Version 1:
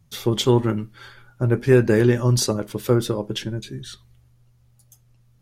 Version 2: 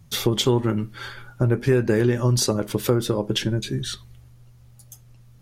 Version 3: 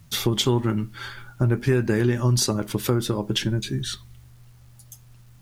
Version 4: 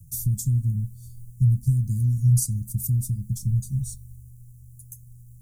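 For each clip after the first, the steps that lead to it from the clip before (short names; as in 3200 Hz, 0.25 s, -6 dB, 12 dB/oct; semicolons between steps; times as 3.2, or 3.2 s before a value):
compressor 3:1, threshold -27 dBFS, peak gain reduction 13 dB; gain +7.5 dB
bell 500 Hz -6.5 dB 0.67 oct; requantised 10-bit, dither none
inverse Chebyshev band-stop 440–2900 Hz, stop band 60 dB; gain +4 dB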